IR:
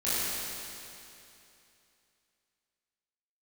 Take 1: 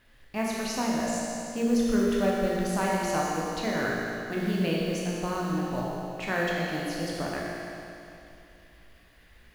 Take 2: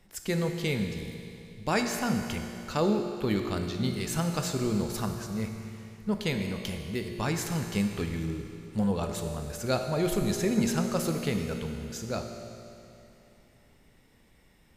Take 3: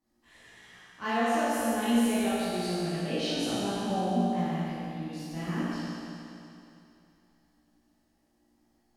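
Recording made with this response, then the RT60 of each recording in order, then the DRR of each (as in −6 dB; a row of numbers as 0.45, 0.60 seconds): 3; 2.8, 2.8, 2.8 seconds; −4.5, 4.5, −13.0 decibels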